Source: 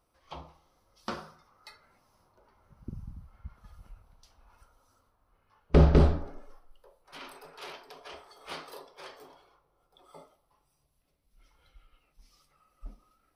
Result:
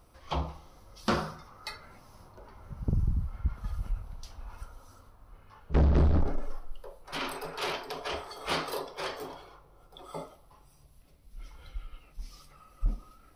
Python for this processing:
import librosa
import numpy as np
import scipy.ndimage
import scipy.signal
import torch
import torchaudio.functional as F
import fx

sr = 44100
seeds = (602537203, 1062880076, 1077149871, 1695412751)

p1 = fx.low_shelf(x, sr, hz=190.0, db=8.0)
p2 = fx.over_compress(p1, sr, threshold_db=-25.0, ratio=-0.5)
p3 = p1 + (p2 * librosa.db_to_amplitude(2.0))
p4 = 10.0 ** (-17.5 / 20.0) * np.tanh(p3 / 10.0 ** (-17.5 / 20.0))
y = p4 * librosa.db_to_amplitude(-1.5)